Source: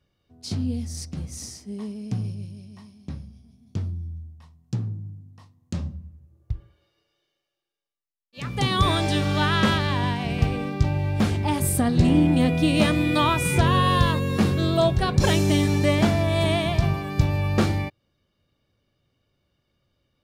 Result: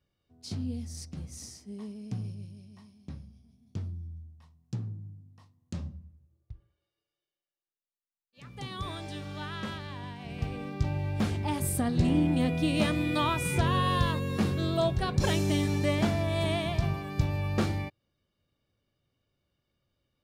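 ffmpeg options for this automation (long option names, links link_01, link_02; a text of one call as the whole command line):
ffmpeg -i in.wav -af "volume=2dB,afade=type=out:start_time=5.9:duration=0.62:silence=0.354813,afade=type=in:start_time=10.14:duration=0.78:silence=0.334965" out.wav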